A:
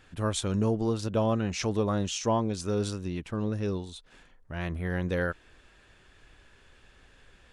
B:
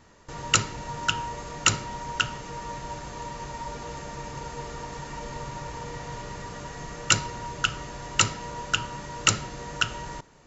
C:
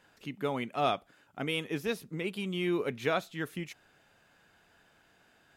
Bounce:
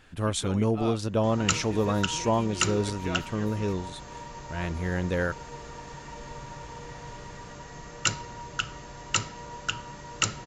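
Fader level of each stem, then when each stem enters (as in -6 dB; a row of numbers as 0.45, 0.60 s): +1.5, -5.0, -7.0 dB; 0.00, 0.95, 0.00 s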